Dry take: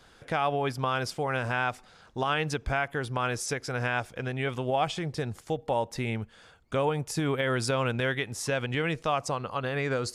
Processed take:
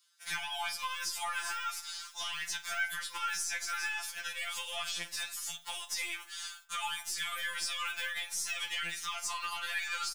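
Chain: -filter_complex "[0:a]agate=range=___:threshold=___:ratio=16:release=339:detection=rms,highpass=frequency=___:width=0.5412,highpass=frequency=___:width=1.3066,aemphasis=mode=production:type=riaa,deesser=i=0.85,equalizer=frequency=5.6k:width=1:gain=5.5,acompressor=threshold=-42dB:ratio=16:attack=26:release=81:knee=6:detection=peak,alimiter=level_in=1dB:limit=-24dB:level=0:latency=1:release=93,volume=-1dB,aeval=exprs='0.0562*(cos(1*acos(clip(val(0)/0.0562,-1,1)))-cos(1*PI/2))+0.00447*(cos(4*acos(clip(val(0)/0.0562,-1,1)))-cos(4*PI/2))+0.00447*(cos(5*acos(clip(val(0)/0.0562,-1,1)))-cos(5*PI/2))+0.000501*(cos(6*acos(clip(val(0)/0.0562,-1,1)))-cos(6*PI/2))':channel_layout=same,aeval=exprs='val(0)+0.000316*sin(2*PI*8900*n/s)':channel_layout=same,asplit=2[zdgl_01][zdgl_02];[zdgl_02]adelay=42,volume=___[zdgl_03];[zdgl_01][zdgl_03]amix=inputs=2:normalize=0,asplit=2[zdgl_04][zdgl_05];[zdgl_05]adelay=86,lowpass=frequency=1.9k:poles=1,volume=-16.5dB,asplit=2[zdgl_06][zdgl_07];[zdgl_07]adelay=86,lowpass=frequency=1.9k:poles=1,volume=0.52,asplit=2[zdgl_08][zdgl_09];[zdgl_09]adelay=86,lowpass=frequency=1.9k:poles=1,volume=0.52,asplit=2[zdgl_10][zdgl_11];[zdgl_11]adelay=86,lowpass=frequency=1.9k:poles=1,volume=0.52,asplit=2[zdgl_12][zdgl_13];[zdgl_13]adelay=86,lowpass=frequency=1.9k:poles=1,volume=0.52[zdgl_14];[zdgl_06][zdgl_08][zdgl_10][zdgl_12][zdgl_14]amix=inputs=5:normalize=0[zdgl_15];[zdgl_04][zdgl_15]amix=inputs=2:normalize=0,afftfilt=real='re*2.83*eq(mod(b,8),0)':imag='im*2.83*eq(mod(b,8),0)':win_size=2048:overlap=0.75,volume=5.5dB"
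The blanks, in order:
-27dB, -48dB, 1.1k, 1.1k, -13.5dB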